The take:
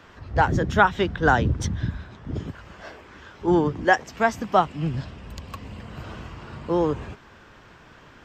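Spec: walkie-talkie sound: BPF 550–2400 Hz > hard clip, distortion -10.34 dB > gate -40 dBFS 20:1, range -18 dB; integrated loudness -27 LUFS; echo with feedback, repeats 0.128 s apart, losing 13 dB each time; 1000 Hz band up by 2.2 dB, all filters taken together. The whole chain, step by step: BPF 550–2400 Hz; bell 1000 Hz +4 dB; feedback echo 0.128 s, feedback 22%, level -13 dB; hard clip -13.5 dBFS; gate -40 dBFS 20:1, range -18 dB; gain -2 dB

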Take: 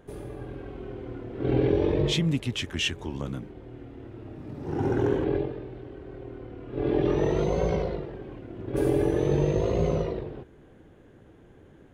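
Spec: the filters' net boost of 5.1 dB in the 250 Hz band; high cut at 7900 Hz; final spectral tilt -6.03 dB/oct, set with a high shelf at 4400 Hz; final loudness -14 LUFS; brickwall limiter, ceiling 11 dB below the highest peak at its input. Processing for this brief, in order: LPF 7900 Hz; bell 250 Hz +7.5 dB; high shelf 4400 Hz +7.5 dB; gain +16 dB; limiter -3 dBFS

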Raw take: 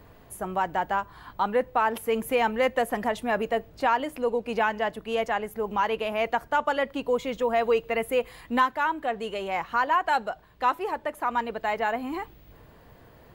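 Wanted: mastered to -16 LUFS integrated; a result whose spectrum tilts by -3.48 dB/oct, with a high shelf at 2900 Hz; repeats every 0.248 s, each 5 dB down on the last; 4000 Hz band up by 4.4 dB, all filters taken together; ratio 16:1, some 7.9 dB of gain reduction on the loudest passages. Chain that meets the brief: high shelf 2900 Hz +4 dB; bell 4000 Hz +3.5 dB; compressor 16:1, threshold -25 dBFS; feedback echo 0.248 s, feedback 56%, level -5 dB; gain +13.5 dB

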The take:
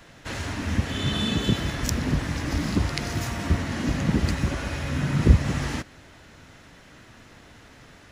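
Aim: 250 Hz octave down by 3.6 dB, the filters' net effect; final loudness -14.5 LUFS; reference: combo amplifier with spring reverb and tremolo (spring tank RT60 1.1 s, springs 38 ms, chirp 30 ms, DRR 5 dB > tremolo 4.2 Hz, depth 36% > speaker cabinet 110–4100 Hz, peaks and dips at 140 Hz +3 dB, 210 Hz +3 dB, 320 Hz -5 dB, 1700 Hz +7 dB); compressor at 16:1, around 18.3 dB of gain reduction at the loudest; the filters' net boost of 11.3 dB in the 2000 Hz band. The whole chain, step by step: bell 250 Hz -6 dB; bell 2000 Hz +8.5 dB; compressor 16:1, threshold -27 dBFS; spring tank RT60 1.1 s, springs 38 ms, chirp 30 ms, DRR 5 dB; tremolo 4.2 Hz, depth 36%; speaker cabinet 110–4100 Hz, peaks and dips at 140 Hz +3 dB, 210 Hz +3 dB, 320 Hz -5 dB, 1700 Hz +7 dB; gain +16 dB

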